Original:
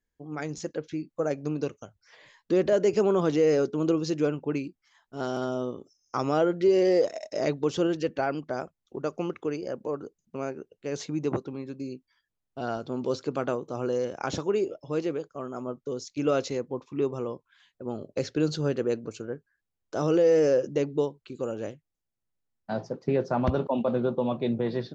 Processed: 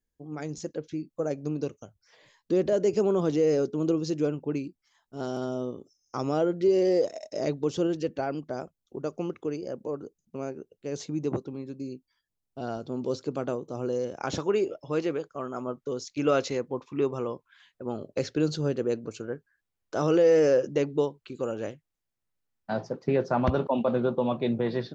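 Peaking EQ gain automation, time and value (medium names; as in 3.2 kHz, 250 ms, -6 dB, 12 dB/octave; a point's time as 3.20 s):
peaking EQ 1.7 kHz 2.3 oct
14.06 s -6.5 dB
14.46 s +4 dB
17.98 s +4 dB
18.75 s -4.5 dB
19.32 s +3 dB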